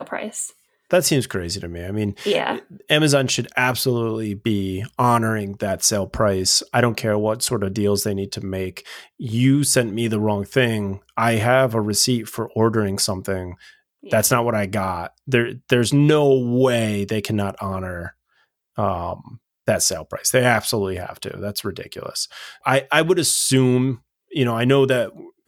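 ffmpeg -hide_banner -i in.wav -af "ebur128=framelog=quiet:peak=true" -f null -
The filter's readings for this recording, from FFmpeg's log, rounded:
Integrated loudness:
  I:         -20.2 LUFS
  Threshold: -30.6 LUFS
Loudness range:
  LRA:         3.1 LU
  Threshold: -40.6 LUFS
  LRA low:   -22.1 LUFS
  LRA high:  -19.0 LUFS
True peak:
  Peak:       -1.1 dBFS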